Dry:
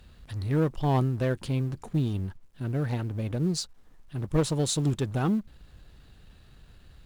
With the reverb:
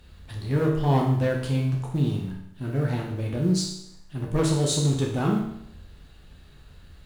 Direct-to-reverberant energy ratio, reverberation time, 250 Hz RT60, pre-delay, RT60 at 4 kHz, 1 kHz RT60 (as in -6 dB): -1.5 dB, 0.75 s, 0.75 s, 10 ms, 0.75 s, 0.75 s